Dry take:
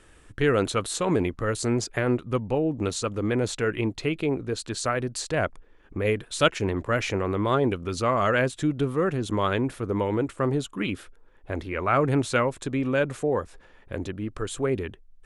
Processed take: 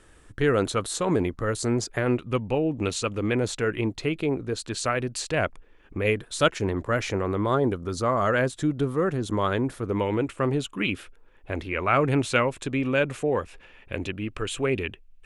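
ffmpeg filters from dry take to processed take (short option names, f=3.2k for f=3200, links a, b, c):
-af "asetnsamples=n=441:p=0,asendcmd='2.06 equalizer g 7.5;3.37 equalizer g -0.5;4.71 equalizer g 5.5;6.14 equalizer g -3.5;7.46 equalizer g -11;8.27 equalizer g -4.5;9.85 equalizer g 7;13.26 equalizer g 13.5',equalizer=f=2.6k:t=o:w=0.62:g=-3"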